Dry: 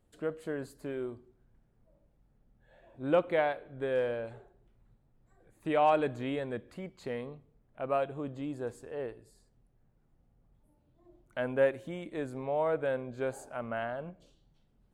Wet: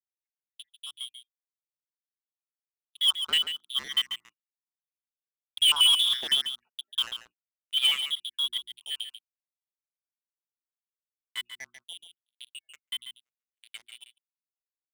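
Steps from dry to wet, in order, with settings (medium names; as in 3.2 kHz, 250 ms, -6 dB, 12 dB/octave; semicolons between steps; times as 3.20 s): random holes in the spectrogram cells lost 67%; Doppler pass-by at 5.98 s, 6 m/s, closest 6.7 m; spectral noise reduction 15 dB; frequency inversion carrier 3.6 kHz; high-pass 78 Hz 12 dB/octave; comb 4.6 ms, depth 36%; in parallel at -6.5 dB: bit crusher 6-bit; on the sum: waveshaping leveller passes 5; hum notches 60/120/180/240/300/360 Hz; on a send: delay 141 ms -9.5 dB; on the sum: gate -49 dBFS, range -34 dB; trim -3.5 dB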